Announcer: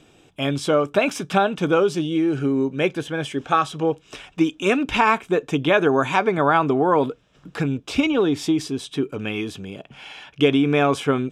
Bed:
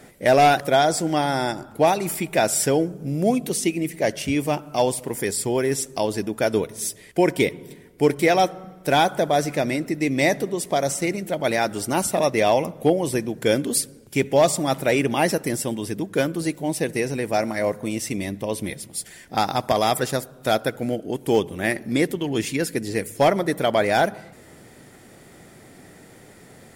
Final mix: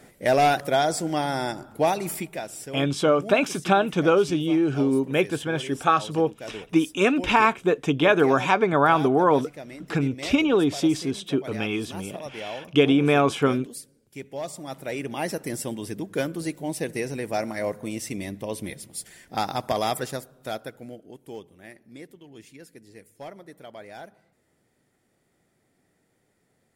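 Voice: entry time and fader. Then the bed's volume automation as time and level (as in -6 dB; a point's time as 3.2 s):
2.35 s, -1.0 dB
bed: 2.19 s -4 dB
2.47 s -17 dB
14.32 s -17 dB
15.62 s -5 dB
19.87 s -5 dB
21.64 s -22.5 dB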